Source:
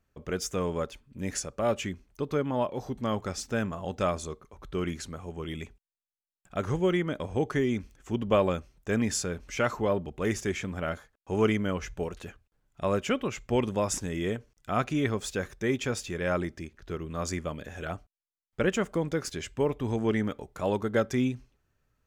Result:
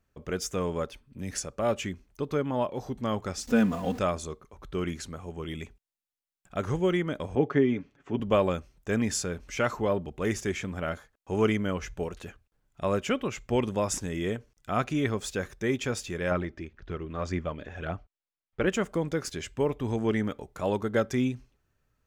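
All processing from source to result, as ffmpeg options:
ffmpeg -i in.wav -filter_complex "[0:a]asettb=1/sr,asplit=3[link_01][link_02][link_03];[link_01]atrim=end=0.894[link_04];[link_02]atrim=start=0.89:end=1.38,asetpts=PTS-STARTPTS,afade=type=in:duration=0.004:curve=qsin,afade=type=out:start_time=0.486:duration=0.004:curve=qsin,bandreject=frequency=7000:width=7.3,acrossover=split=200|3000[link_05][link_06][link_07];[link_06]acompressor=threshold=-38dB:ratio=6:attack=3.2:release=140:knee=2.83:detection=peak[link_08];[link_05][link_08][link_07]amix=inputs=3:normalize=0[link_09];[link_03]atrim=start=1.376[link_10];[link_04][link_09]acrossfade=duration=0.004:curve1=hsin:curve2=qsin[link_11];[link_11][link_10]acrossfade=duration=0.004:curve1=qsin:curve2=hsin,asettb=1/sr,asplit=3[link_12][link_13][link_14];[link_12]atrim=end=3.474[link_15];[link_13]atrim=start=3.47:end=3.99,asetpts=PTS-STARTPTS,afade=type=in:duration=0.004:curve=qsin,afade=type=out:start_time=0.516:duration=0.004:curve=qsin,aeval=exprs='val(0)+0.5*0.0075*sgn(val(0))':channel_layout=same,equalizer=frequency=240:width=1.3:gain=5,aecho=1:1:4.1:0.8,atrim=end_sample=22932[link_16];[link_14]atrim=start=3.986[link_17];[link_15][link_16]acrossfade=duration=0.004:curve1=hsin:curve2=qsin[link_18];[link_18][link_17]acrossfade=duration=0.004:curve1=qsin:curve2=hsin,asettb=1/sr,asplit=3[link_19][link_20][link_21];[link_19]atrim=end=7.354[link_22];[link_20]atrim=start=7.35:end=8.2,asetpts=PTS-STARTPTS,afade=type=in:duration=0.004:curve=qsin,afade=type=out:start_time=0.846:duration=0.004:curve=qsin,highpass=170,lowpass=2800,lowshelf=frequency=430:gain=4,aecho=1:1:7.1:0.45,atrim=end_sample=37485[link_23];[link_21]atrim=start=8.196[link_24];[link_22][link_23]acrossfade=duration=0.004:curve1=hsin:curve2=qsin[link_25];[link_25][link_24]acrossfade=duration=0.004:curve1=qsin:curve2=hsin,asettb=1/sr,asplit=3[link_26][link_27][link_28];[link_26]atrim=end=16.314[link_29];[link_27]atrim=start=16.31:end=18.67,asetpts=PTS-STARTPTS,afade=type=in:duration=0.004:curve=qsin,afade=type=out:start_time=2.356:duration=0.004:curve=qsin,lowpass=3500,aphaser=in_gain=1:out_gain=1:delay=3.4:decay=0.33:speed=1.9:type=triangular[link_30];[link_28]atrim=start=18.666[link_31];[link_29][link_30]acrossfade=duration=0.004:curve1=hsin:curve2=qsin[link_32];[link_32][link_31]acrossfade=duration=0.004:curve1=qsin:curve2=hsin" out.wav

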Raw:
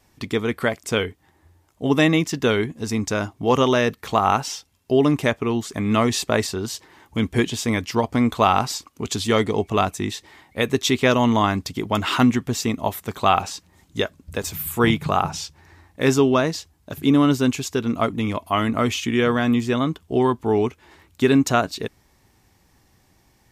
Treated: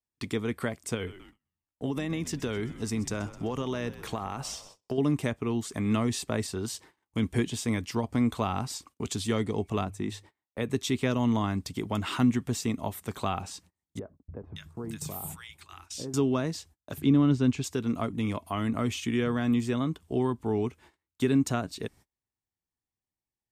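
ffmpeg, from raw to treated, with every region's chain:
ffmpeg -i in.wav -filter_complex "[0:a]asettb=1/sr,asplit=3[link_01][link_02][link_03];[link_01]atrim=end=0.944[link_04];[link_02]atrim=start=0.94:end=4.98,asetpts=PTS-STARTPTS,afade=type=in:duration=0.004:curve=qsin,afade=type=out:start_time=4.036:duration=0.004:curve=qsin,acompressor=threshold=-19dB:ratio=20:attack=3.2:release=140:knee=1:detection=peak,asplit=6[link_05][link_06][link_07][link_08][link_09][link_10];[link_06]adelay=128,afreqshift=-76,volume=-17dB[link_11];[link_07]adelay=256,afreqshift=-152,volume=-22.4dB[link_12];[link_08]adelay=384,afreqshift=-228,volume=-27.7dB[link_13];[link_09]adelay=512,afreqshift=-304,volume=-33.1dB[link_14];[link_10]adelay=640,afreqshift=-380,volume=-38.4dB[link_15];[link_05][link_11][link_12][link_13][link_14][link_15]amix=inputs=6:normalize=0,atrim=end_sample=178164[link_16];[link_03]atrim=start=4.976[link_17];[link_04][link_16]acrossfade=duration=0.004:curve1=hsin:curve2=qsin[link_18];[link_18][link_17]acrossfade=duration=0.004:curve1=qsin:curve2=hsin,asettb=1/sr,asplit=3[link_19][link_20][link_21];[link_19]atrim=end=9.844[link_22];[link_20]atrim=start=9.84:end=10.71,asetpts=PTS-STARTPTS,afade=type=in:duration=0.004:curve=qsin,afade=type=out:start_time=0.866:duration=0.004:curve=qsin,bandreject=frequency=50:width_type=h:width=6,bandreject=frequency=100:width_type=h:width=6,agate=range=-33dB:threshold=-47dB:ratio=3:release=100:detection=peak,highshelf=frequency=2100:gain=-8[link_23];[link_21]atrim=start=10.706[link_24];[link_22][link_23]acrossfade=duration=0.004:curve1=hsin:curve2=qsin[link_25];[link_25][link_24]acrossfade=duration=0.004:curve1=qsin:curve2=hsin,asettb=1/sr,asplit=3[link_26][link_27][link_28];[link_26]atrim=end=13.994[link_29];[link_27]atrim=start=13.99:end=16.14,asetpts=PTS-STARTPTS,afade=type=in:duration=0.004:curve=qsin,afade=type=out:start_time=2.146:duration=0.004:curve=qsin,equalizer=frequency=1200:width_type=o:width=2.6:gain=-4.5,acompressor=threshold=-30dB:ratio=4:attack=3.2:release=140:knee=1:detection=peak,acrossover=split=1200[link_30][link_31];[link_31]adelay=570[link_32];[link_30][link_32]amix=inputs=2:normalize=0,atrim=end_sample=94815[link_33];[link_28]atrim=start=16.136[link_34];[link_29][link_33]acrossfade=duration=0.004:curve1=hsin:curve2=qsin[link_35];[link_35][link_34]acrossfade=duration=0.004:curve1=qsin:curve2=hsin,asettb=1/sr,asplit=3[link_36][link_37][link_38];[link_36]atrim=end=17.024[link_39];[link_37]atrim=start=17.02:end=17.64,asetpts=PTS-STARTPTS,afade=type=in:duration=0.004:curve=qsin,afade=type=out:start_time=0.616:duration=0.004:curve=qsin,lowpass=5100,lowshelf=frequency=190:gain=5.5[link_40];[link_38]atrim=start=17.636[link_41];[link_39][link_40]acrossfade=duration=0.004:curve1=hsin:curve2=qsin[link_42];[link_42][link_41]acrossfade=duration=0.004:curve1=qsin:curve2=hsin,agate=range=-32dB:threshold=-45dB:ratio=16:detection=peak,equalizer=frequency=8700:width_type=o:width=0.33:gain=7,acrossover=split=300[link_43][link_44];[link_44]acompressor=threshold=-31dB:ratio=2[link_45];[link_43][link_45]amix=inputs=2:normalize=0,volume=-5dB" out.wav

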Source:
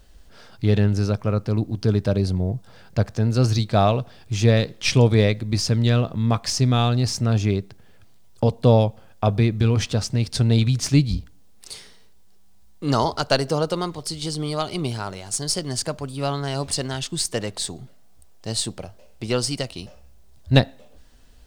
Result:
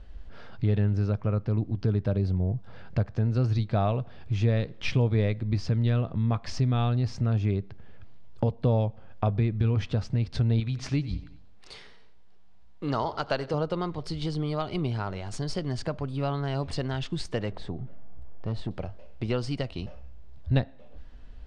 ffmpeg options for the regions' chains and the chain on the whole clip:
ffmpeg -i in.wav -filter_complex "[0:a]asettb=1/sr,asplit=3[link_01][link_02][link_03];[link_01]atrim=end=10.604[link_04];[link_02]atrim=start=10.6:end=13.54,asetpts=PTS-STARTPTS,afade=type=in:duration=0.004:curve=qsin,afade=type=out:start_time=2.936:duration=0.004:curve=qsin,aecho=1:1:92|184|276|368:0.112|0.0516|0.0237|0.0109,atrim=end_sample=129654,deesser=0.25,lowshelf=frequency=280:gain=-8.5[link_05];[link_03]atrim=start=13.536[link_06];[link_04][link_05]acrossfade=duration=0.004:curve1=hsin:curve2=qsin[link_07];[link_07][link_06]acrossfade=duration=0.004:curve1=qsin:curve2=hsin,asettb=1/sr,asplit=3[link_08][link_09][link_10];[link_08]atrim=end=17.524[link_11];[link_09]atrim=start=17.52:end=18.71,asetpts=PTS-STARTPTS,afade=type=in:duration=0.004:curve=qsin,afade=type=out:start_time=1.186:duration=0.004:curve=qsin,lowpass=frequency=1100:poles=1,acompressor=mode=upward:threshold=-35dB:ratio=2.5:attack=3.2:release=140:knee=2.83:detection=peak,volume=23.5dB,asoftclip=hard,volume=-23.5dB[link_12];[link_10]atrim=start=18.706[link_13];[link_11][link_12]acrossfade=duration=0.004:curve1=hsin:curve2=qsin[link_14];[link_14][link_13]acrossfade=duration=0.004:curve1=qsin:curve2=hsin,lowpass=2800,lowshelf=frequency=100:gain=8.5,acompressor=threshold=-29dB:ratio=2" out.wav

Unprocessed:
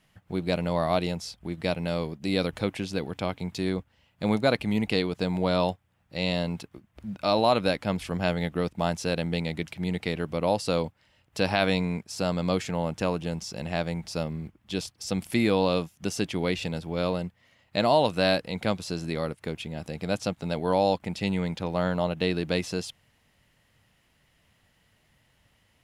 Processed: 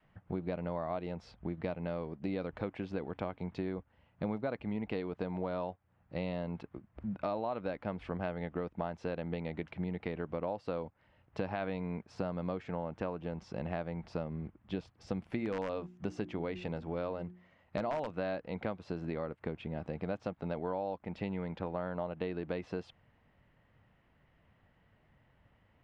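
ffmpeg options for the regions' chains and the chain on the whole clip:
ffmpeg -i in.wav -filter_complex "[0:a]asettb=1/sr,asplit=3[link_01][link_02][link_03];[link_01]atrim=end=15.384[link_04];[link_02]atrim=start=15.38:end=18.11,asetpts=PTS-STARTPTS,afade=type=in:duration=0.004:curve=qsin,afade=type=out:start_time=2.726:duration=0.004:curve=qsin,equalizer=frequency=6800:width_type=o:width=0.65:gain=6,bandreject=frequency=60:width_type=h:width=6,bandreject=frequency=120:width_type=h:width=6,bandreject=frequency=180:width_type=h:width=6,bandreject=frequency=240:width_type=h:width=6,bandreject=frequency=300:width_type=h:width=6,bandreject=frequency=360:width_type=h:width=6,aeval=exprs='(mod(3.55*val(0)+1,2)-1)/3.55':channel_layout=same[link_05];[link_03]atrim=start=18.106[link_06];[link_04][link_05]acrossfade=duration=0.004:curve1=hsin:curve2=qsin[link_07];[link_07][link_06]acrossfade=duration=0.004:curve1=qsin:curve2=hsin,lowpass=1600,adynamicequalizer=threshold=0.00891:dfrequency=130:dqfactor=0.77:tfrequency=130:tqfactor=0.77:attack=5:release=100:ratio=0.375:range=3:mode=cutabove:tftype=bell,acompressor=threshold=-33dB:ratio=6" out.wav

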